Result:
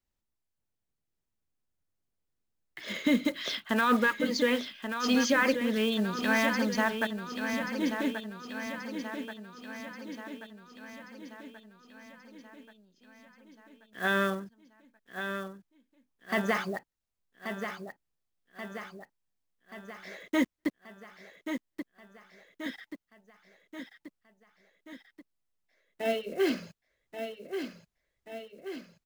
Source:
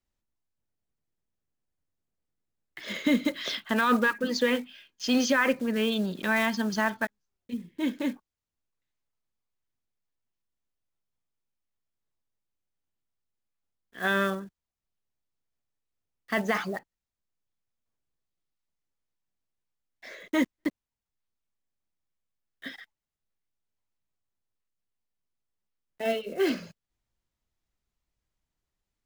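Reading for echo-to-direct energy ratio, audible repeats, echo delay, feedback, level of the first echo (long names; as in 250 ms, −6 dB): −6.0 dB, 6, 1,132 ms, 58%, −8.0 dB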